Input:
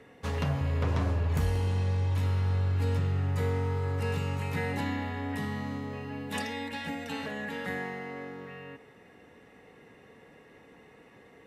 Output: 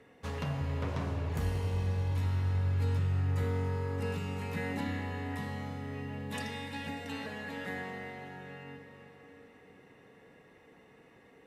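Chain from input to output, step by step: 3.43–4.88 resonant low shelf 150 Hz -7.5 dB, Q 3; reverb RT60 5.2 s, pre-delay 30 ms, DRR 6 dB; gain -5 dB

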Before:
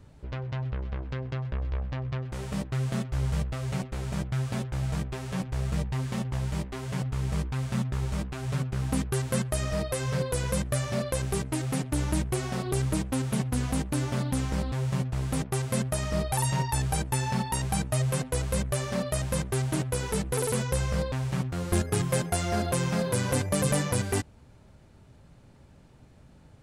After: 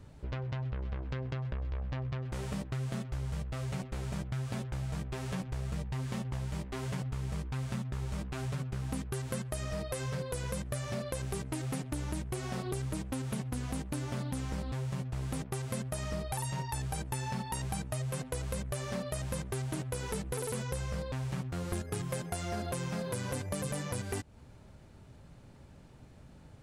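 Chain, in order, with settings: compressor, threshold -33 dBFS, peak gain reduction 11.5 dB

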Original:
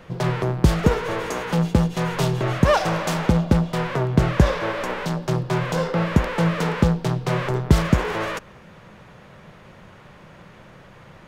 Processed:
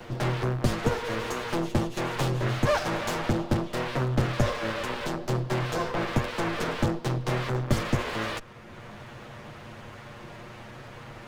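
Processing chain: minimum comb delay 8.5 ms; three-band squash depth 40%; gain -4 dB

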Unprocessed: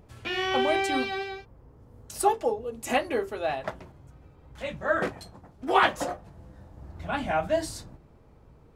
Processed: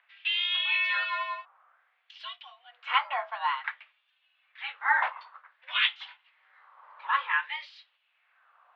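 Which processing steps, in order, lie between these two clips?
LFO high-pass sine 0.54 Hz 770–2900 Hz; mistuned SSB +260 Hz 200–3400 Hz

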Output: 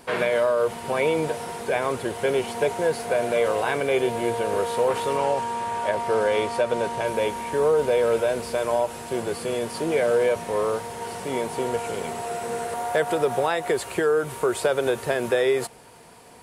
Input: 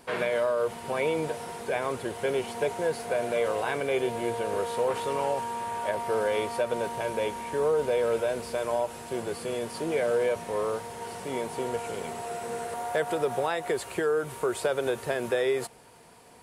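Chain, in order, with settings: 5.17–7.06 LPF 9500 Hz 12 dB/oct; gain +5 dB

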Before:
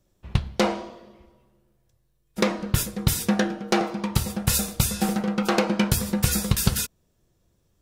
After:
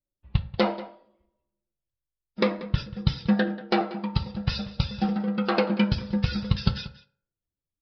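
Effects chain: per-bin expansion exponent 1.5; outdoor echo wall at 32 m, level -17 dB; on a send at -9.5 dB: reverb RT60 0.55 s, pre-delay 3 ms; on the sum: downsampling 11025 Hz

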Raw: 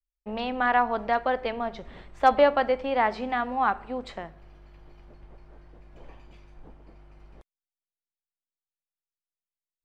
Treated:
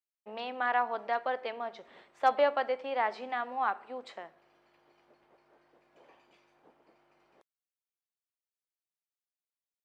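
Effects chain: HPF 390 Hz 12 dB/oct; gain -6 dB

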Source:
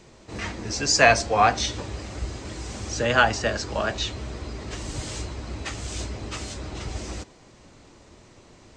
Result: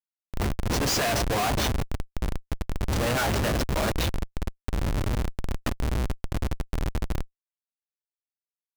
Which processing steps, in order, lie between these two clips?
1.15–2.13 notches 60/120/180/240/300 Hz; 5.68–6.51 spectral gain 1100–3400 Hz -26 dB; Schmitt trigger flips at -26 dBFS; gain +2.5 dB

